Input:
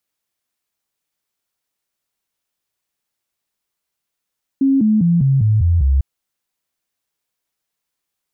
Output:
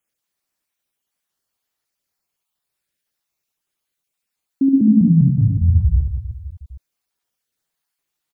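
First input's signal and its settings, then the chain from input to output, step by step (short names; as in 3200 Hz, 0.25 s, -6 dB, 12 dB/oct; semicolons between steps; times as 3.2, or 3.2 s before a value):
stepped sine 271 Hz down, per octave 3, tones 7, 0.20 s, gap 0.00 s -10.5 dBFS
random spectral dropouts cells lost 36%; reverse bouncing-ball echo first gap 70 ms, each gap 1.4×, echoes 5; record warp 78 rpm, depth 100 cents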